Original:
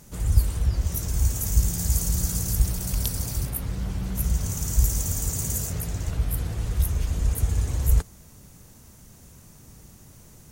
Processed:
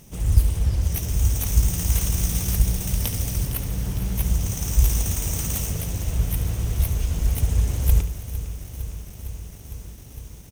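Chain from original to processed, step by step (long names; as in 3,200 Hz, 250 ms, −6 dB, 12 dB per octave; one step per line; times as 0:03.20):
lower of the sound and its delayed copy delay 0.34 ms
on a send: repeating echo 72 ms, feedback 57%, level −12.5 dB
on the sum: feedback echo at a low word length 457 ms, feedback 80%, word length 8 bits, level −13 dB
level +2 dB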